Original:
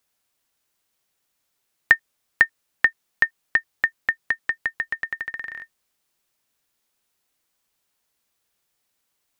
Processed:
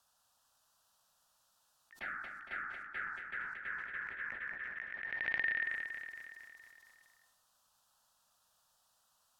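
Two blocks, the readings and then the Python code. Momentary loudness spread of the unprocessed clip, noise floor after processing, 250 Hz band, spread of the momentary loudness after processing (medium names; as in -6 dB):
10 LU, -75 dBFS, no reading, 16 LU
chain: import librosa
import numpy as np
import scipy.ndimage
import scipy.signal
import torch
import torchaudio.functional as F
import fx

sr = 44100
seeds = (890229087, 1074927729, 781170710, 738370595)

p1 = fx.low_shelf(x, sr, hz=480.0, db=-9.0)
p2 = fx.env_lowpass_down(p1, sr, base_hz=300.0, full_db=-19.5)
p3 = 10.0 ** (-15.5 / 20.0) * np.tanh(p2 / 10.0 ** (-15.5 / 20.0))
p4 = p2 + F.gain(torch.from_numpy(p3), -11.0).numpy()
p5 = fx.lowpass(p4, sr, hz=3500.0, slope=6)
p6 = fx.peak_eq(p5, sr, hz=1300.0, db=3.0, octaves=0.21)
p7 = fx.rev_plate(p6, sr, seeds[0], rt60_s=0.69, hf_ratio=0.45, predelay_ms=95, drr_db=18.0)
p8 = fx.env_phaser(p7, sr, low_hz=370.0, high_hz=1500.0, full_db=-27.5)
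p9 = fx.over_compress(p8, sr, threshold_db=-40.0, ratio=-0.5)
p10 = p9 + fx.echo_feedback(p9, sr, ms=231, feedback_pct=58, wet_db=-7.5, dry=0)
y = fx.sustainer(p10, sr, db_per_s=32.0)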